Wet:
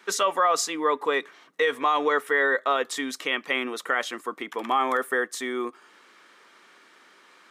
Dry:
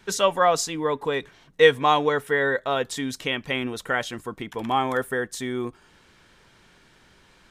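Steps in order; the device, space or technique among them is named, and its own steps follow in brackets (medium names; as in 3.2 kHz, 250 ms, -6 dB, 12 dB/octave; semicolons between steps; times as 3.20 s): laptop speaker (high-pass 270 Hz 24 dB/octave; peaking EQ 1.2 kHz +10.5 dB 0.26 oct; peaking EQ 2 kHz +4.5 dB 0.49 oct; peak limiter -13 dBFS, peak gain reduction 12 dB)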